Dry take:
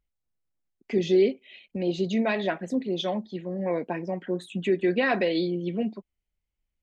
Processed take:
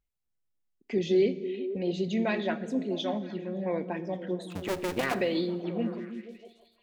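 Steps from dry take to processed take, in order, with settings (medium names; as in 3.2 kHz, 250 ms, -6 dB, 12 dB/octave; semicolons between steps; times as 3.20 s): 4.50–5.15 s: cycle switcher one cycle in 2, muted; repeats whose band climbs or falls 162 ms, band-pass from 150 Hz, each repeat 0.7 oct, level -5 dB; Schroeder reverb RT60 1.2 s, combs from 27 ms, DRR 15.5 dB; trim -3.5 dB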